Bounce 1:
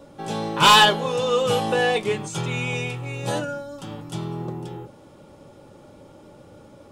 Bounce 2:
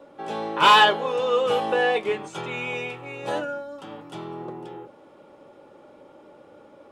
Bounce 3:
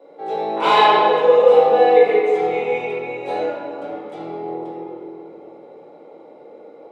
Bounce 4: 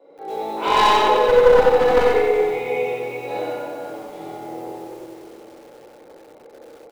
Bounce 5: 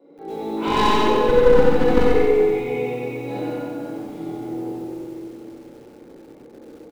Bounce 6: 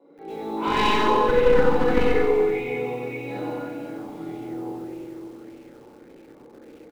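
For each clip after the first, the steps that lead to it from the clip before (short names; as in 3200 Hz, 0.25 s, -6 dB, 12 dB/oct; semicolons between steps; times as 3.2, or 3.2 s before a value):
three-band isolator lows -17 dB, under 260 Hz, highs -13 dB, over 3200 Hz
HPF 130 Hz 24 dB/oct; small resonant body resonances 460/700/2100/3900 Hz, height 16 dB, ringing for 30 ms; reverb RT60 2.5 s, pre-delay 6 ms, DRR -7 dB; gain -10.5 dB
one-sided fold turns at -9 dBFS; on a send: tapped delay 64/98/207/386 ms -4/-9.5/-19.5/-15.5 dB; on the sum: lo-fi delay 90 ms, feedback 35%, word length 7-bit, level -3 dB; gain -5 dB
resonant low shelf 400 Hz +10.5 dB, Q 1.5; on a send: echo 0.137 s -7 dB; on the sum: gain -4 dB
LFO bell 1.7 Hz 950–2600 Hz +8 dB; gain -4 dB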